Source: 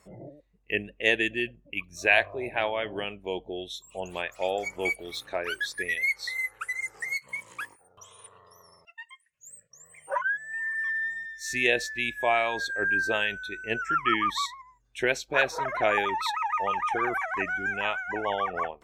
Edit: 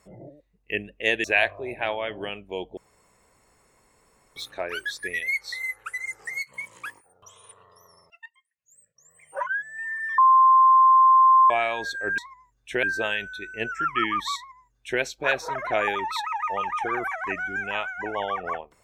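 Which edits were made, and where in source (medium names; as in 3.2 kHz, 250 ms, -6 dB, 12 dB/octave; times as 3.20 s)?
1.24–1.99 s: delete
3.52–5.11 s: room tone
9.01–10.21 s: fade in quadratic, from -14 dB
10.93–12.25 s: bleep 1.05 kHz -12 dBFS
14.46–15.11 s: copy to 12.93 s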